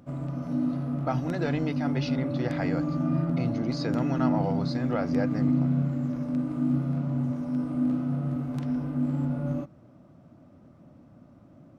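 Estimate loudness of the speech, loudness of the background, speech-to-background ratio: -32.5 LUFS, -28.5 LUFS, -4.0 dB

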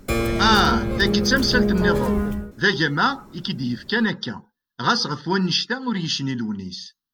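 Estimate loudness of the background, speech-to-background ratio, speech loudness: -23.0 LUFS, 1.0 dB, -22.0 LUFS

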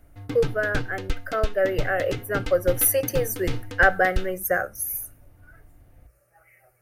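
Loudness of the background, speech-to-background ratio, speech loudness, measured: -33.5 LUFS, 9.0 dB, -24.5 LUFS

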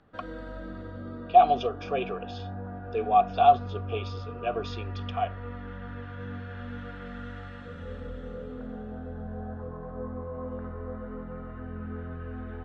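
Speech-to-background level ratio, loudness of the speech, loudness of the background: 13.0 dB, -26.0 LUFS, -39.0 LUFS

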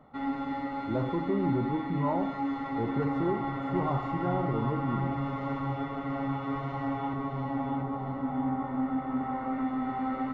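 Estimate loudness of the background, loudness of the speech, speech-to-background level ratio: -33.0 LUFS, -33.0 LUFS, 0.0 dB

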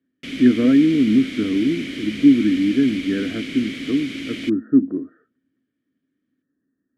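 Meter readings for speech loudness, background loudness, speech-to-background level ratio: -19.0 LUFS, -30.0 LUFS, 11.0 dB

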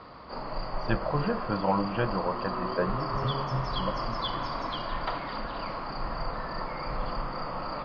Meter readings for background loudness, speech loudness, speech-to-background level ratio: -34.0 LUFS, -32.0 LUFS, 2.0 dB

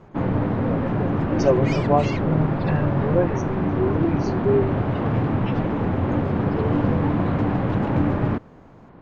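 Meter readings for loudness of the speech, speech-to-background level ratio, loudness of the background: -24.5 LUFS, -1.5 dB, -23.0 LUFS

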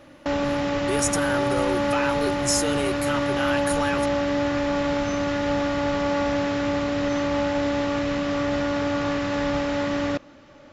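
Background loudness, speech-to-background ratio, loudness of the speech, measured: -24.5 LUFS, -3.5 dB, -28.0 LUFS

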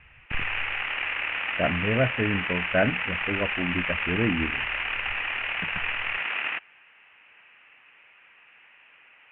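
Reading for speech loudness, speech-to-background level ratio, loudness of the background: -28.5 LUFS, -1.0 dB, -27.5 LUFS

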